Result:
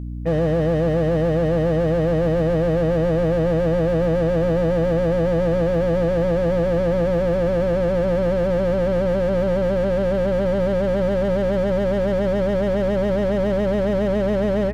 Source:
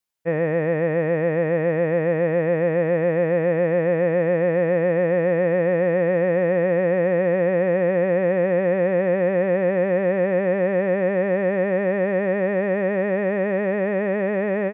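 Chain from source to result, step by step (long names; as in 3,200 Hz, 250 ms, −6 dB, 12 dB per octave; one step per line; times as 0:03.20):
mains hum 60 Hz, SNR 14 dB
slew-rate limiting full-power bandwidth 32 Hz
level +5 dB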